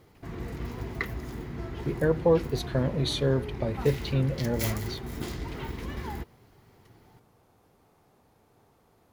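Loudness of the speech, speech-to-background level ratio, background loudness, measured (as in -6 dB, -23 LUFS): -28.5 LUFS, 8.0 dB, -36.5 LUFS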